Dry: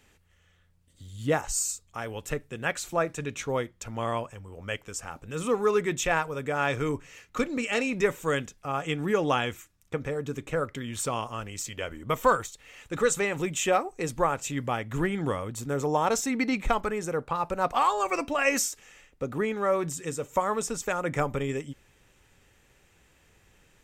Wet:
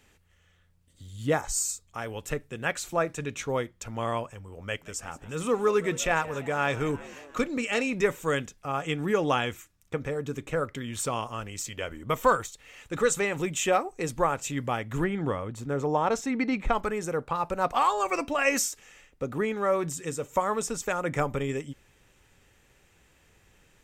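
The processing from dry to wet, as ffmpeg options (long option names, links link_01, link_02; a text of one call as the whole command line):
ffmpeg -i in.wav -filter_complex "[0:a]asettb=1/sr,asplit=3[link_01][link_02][link_03];[link_01]atrim=end=1.334[link_04];[link_02]atrim=start=1.33:end=1.83,asetpts=PTS-STARTPTS,afade=type=in:duration=0.004:curve=qsin,afade=type=out:start_time=0.496:duration=0.004:curve=qsin,asuperstop=centerf=2800:order=12:qfactor=7.8[link_05];[link_03]atrim=start=1.826[link_06];[link_04][link_05]acrossfade=duration=0.004:curve1=hsin:curve2=qsin[link_07];[link_07][link_06]acrossfade=duration=0.004:curve1=qsin:curve2=hsin,asettb=1/sr,asplit=3[link_08][link_09][link_10];[link_08]atrim=end=4.644[link_11];[link_09]atrim=start=4.64:end=7.38,asetpts=PTS-STARTPTS,afade=type=in:duration=0.004:curve=qsin,afade=type=out:start_time=2.736:duration=0.004:curve=qsin,asplit=7[link_12][link_13][link_14][link_15][link_16][link_17][link_18];[link_13]adelay=176,afreqshift=66,volume=-18.5dB[link_19];[link_14]adelay=352,afreqshift=132,volume=-22.4dB[link_20];[link_15]adelay=528,afreqshift=198,volume=-26.3dB[link_21];[link_16]adelay=704,afreqshift=264,volume=-30.1dB[link_22];[link_17]adelay=880,afreqshift=330,volume=-34dB[link_23];[link_18]adelay=1056,afreqshift=396,volume=-37.9dB[link_24];[link_12][link_19][link_20][link_21][link_22][link_23][link_24]amix=inputs=7:normalize=0,atrim=end_sample=120834[link_25];[link_10]atrim=start=7.376[link_26];[link_11][link_25]acrossfade=duration=0.004:curve1=hsin:curve2=qsin[link_27];[link_27][link_26]acrossfade=duration=0.004:curve1=qsin:curve2=hsin,asettb=1/sr,asplit=3[link_28][link_29][link_30];[link_28]atrim=end=15.044[link_31];[link_29]atrim=start=15.04:end=16.75,asetpts=PTS-STARTPTS,afade=type=in:duration=0.004:curve=qsin,afade=type=out:start_time=1.706:duration=0.004:curve=qsin,lowpass=frequency=2700:poles=1[link_32];[link_30]atrim=start=16.746[link_33];[link_31][link_32]acrossfade=duration=0.004:curve1=hsin:curve2=qsin[link_34];[link_34][link_33]acrossfade=duration=0.004:curve1=qsin:curve2=hsin" out.wav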